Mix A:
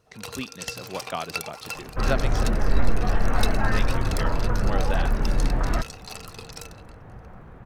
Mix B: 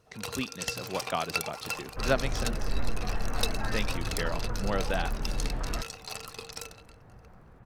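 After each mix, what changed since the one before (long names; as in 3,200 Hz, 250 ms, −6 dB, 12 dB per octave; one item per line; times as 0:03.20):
second sound −9.5 dB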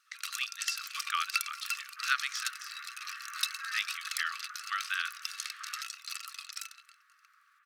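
speech +3.5 dB
master: add linear-phase brick-wall high-pass 1,100 Hz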